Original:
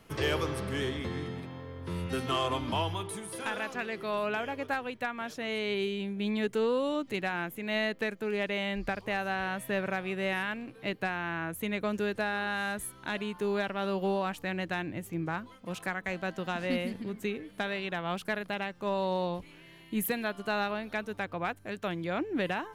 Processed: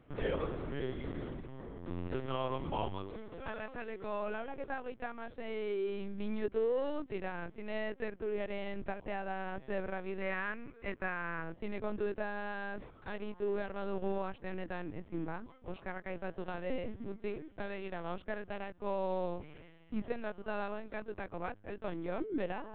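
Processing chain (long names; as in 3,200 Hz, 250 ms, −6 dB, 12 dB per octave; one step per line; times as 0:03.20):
in parallel at −11 dB: sample-and-hold swept by an LFO 34×, swing 60% 0.3 Hz
on the sum: high-shelf EQ 2,200 Hz −9 dB
linear-prediction vocoder at 8 kHz pitch kept
gain on a spectral selection 0:10.21–0:11.42, 950–2,600 Hz +7 dB
reversed playback
upward compression, threshold −35 dBFS
reversed playback
parametric band 530 Hz +2.5 dB 1.7 octaves
level −6.5 dB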